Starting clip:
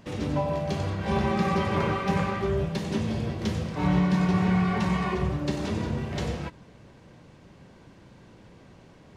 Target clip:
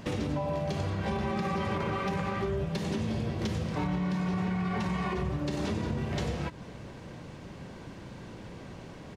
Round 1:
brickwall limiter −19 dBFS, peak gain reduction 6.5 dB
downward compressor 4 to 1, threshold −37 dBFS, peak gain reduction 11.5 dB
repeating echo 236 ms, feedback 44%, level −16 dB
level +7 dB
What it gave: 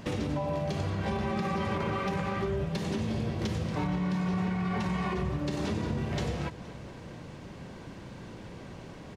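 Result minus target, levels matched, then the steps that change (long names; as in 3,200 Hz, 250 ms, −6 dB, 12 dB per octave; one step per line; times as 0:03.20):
echo-to-direct +10 dB
change: repeating echo 236 ms, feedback 44%, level −26 dB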